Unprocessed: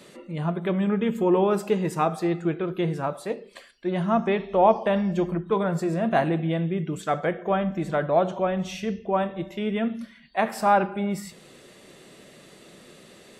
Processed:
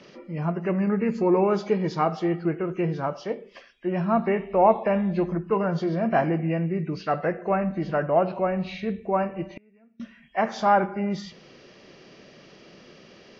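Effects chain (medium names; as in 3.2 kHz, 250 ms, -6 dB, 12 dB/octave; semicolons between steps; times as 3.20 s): knee-point frequency compression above 1.7 kHz 1.5:1; 9.49–10.00 s: inverted gate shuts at -26 dBFS, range -32 dB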